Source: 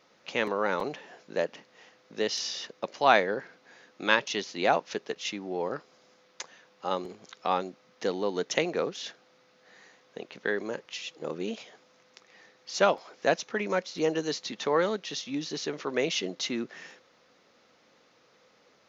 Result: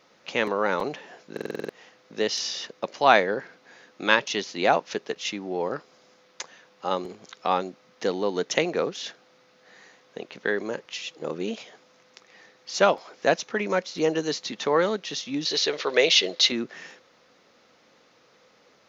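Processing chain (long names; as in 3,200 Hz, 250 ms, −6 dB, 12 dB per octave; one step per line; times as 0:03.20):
0:15.45–0:16.52: octave-band graphic EQ 125/250/500/2,000/4,000 Hz −7/−8/+7/+4/+11 dB
buffer that repeats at 0:01.32, samples 2,048, times 7
level +3.5 dB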